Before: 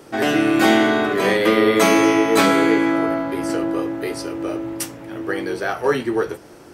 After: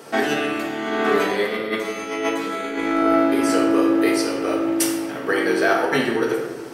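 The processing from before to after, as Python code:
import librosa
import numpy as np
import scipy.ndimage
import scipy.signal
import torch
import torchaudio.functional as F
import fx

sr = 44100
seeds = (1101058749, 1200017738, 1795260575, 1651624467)

y = fx.highpass(x, sr, hz=370.0, slope=6)
y = fx.over_compress(y, sr, threshold_db=-23.0, ratio=-0.5)
y = fx.room_shoebox(y, sr, seeds[0], volume_m3=850.0, walls='mixed', distance_m=1.6)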